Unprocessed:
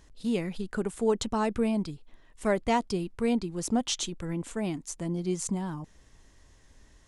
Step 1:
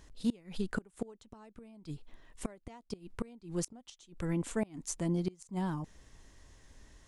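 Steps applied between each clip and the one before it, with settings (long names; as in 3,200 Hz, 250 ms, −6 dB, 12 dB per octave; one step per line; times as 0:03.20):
gate with flip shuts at −21 dBFS, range −27 dB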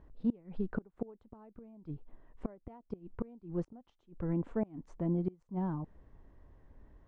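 low-pass filter 1,000 Hz 12 dB per octave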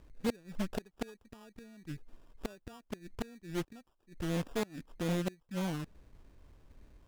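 decimation without filtering 21×
highs frequency-modulated by the lows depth 0.83 ms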